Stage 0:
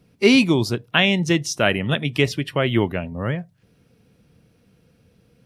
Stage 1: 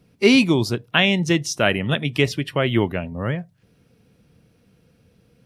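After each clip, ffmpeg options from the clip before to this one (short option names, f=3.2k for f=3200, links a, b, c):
-af anull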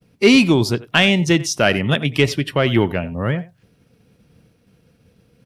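-filter_complex "[0:a]agate=range=-33dB:threshold=-54dB:ratio=3:detection=peak,asplit=2[a][b];[b]adelay=90,highpass=300,lowpass=3.4k,asoftclip=type=hard:threshold=-11dB,volume=-18dB[c];[a][c]amix=inputs=2:normalize=0,acontrast=39,volume=-1.5dB"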